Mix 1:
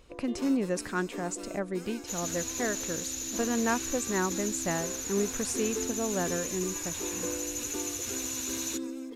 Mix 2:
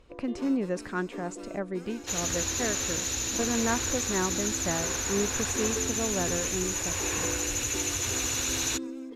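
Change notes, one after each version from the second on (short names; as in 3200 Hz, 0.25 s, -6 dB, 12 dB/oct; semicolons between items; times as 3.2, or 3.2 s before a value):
second sound +12.0 dB; master: add LPF 3000 Hz 6 dB/oct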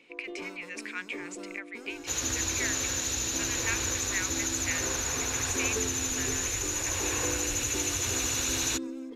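speech: add resonant high-pass 2300 Hz, resonance Q 6.5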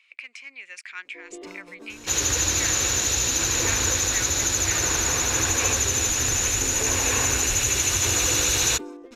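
first sound: entry +1.05 s; second sound +8.0 dB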